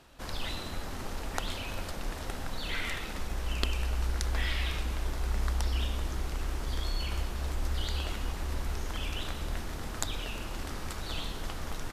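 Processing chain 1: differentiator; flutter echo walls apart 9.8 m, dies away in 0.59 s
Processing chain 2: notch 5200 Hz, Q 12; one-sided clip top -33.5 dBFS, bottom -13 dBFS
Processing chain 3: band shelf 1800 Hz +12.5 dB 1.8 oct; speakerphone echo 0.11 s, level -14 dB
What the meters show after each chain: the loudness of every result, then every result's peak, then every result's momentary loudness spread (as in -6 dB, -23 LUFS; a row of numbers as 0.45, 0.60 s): -43.5, -37.5, -29.5 LUFS; -11.5, -13.0, -4.5 dBFS; 6, 5, 8 LU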